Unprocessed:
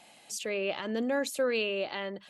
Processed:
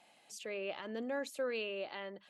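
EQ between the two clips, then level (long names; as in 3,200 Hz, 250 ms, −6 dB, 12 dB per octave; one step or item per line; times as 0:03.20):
low-shelf EQ 260 Hz −6.5 dB
high-shelf EQ 3,800 Hz −7 dB
−6.5 dB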